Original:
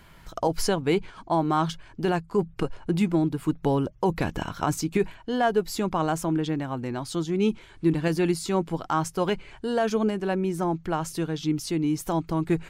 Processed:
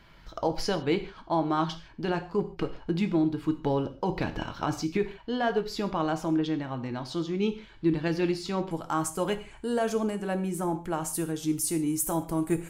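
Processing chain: resonant high shelf 6500 Hz -9 dB, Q 1.5, from 8.71 s +7 dB, from 11.13 s +13.5 dB; reverb, pre-delay 3 ms, DRR 7.5 dB; gain -4 dB

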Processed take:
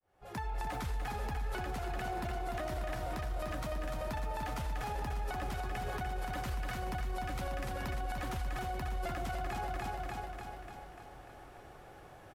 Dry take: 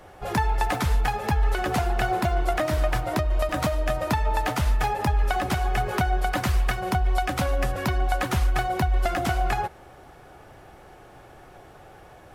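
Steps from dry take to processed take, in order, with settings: opening faded in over 1.02 s; feedback echo 0.295 s, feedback 59%, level -5.5 dB; limiter -22.5 dBFS, peak gain reduction 11 dB; gain -7 dB

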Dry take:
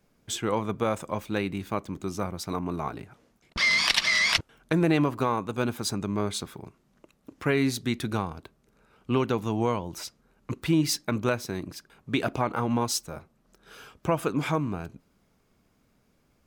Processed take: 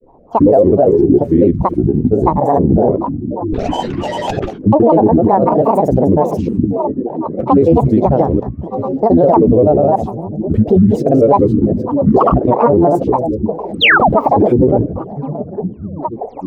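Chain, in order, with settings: reverse delay 0.138 s, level -8.5 dB; EQ curve 210 Hz 0 dB, 570 Hz +12 dB, 880 Hz -20 dB, 4200 Hz -30 dB; painted sound fall, 13.78–14.03, 510–6500 Hz -23 dBFS; delay with a stepping band-pass 0.639 s, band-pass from 150 Hz, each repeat 0.7 oct, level -10.5 dB; grains 0.1 s, grains 20/s, pitch spread up and down by 12 st; maximiser +20 dB; mismatched tape noise reduction decoder only; gain -1 dB

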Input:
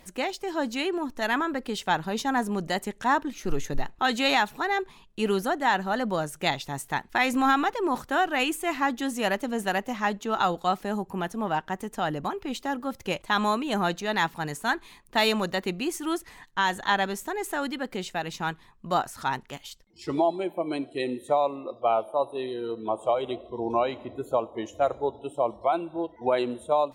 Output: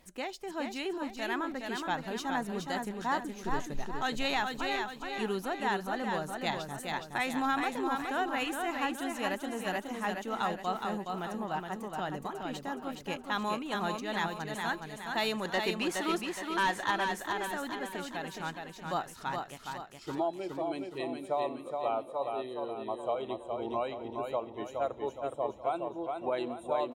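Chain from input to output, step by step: 15.45–16.91 overdrive pedal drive 18 dB, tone 3100 Hz, clips at -11 dBFS; on a send: feedback echo 0.418 s, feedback 46%, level -4.5 dB; on the sum: gain -8.5 dB

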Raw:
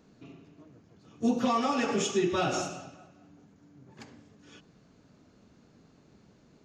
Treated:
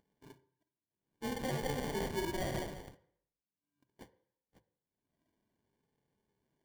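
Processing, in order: rattling part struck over -43 dBFS, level -27 dBFS; HPF 63 Hz 6 dB/oct; notches 60/120/180/240/300/360/420 Hz; gate -47 dBFS, range -60 dB; high shelf 5600 Hz +7 dB; in parallel at 0 dB: limiter -28.5 dBFS, peak gain reduction 12 dB; on the sum: upward compressor, threshold -36 dBFS; flange 0.66 Hz, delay 2 ms, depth 1.2 ms, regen +42%; sample-rate reducer 1300 Hz, jitter 0%; on a send at -13.5 dB: reverb RT60 0.70 s, pre-delay 3 ms; on the sum: gain -7.5 dB

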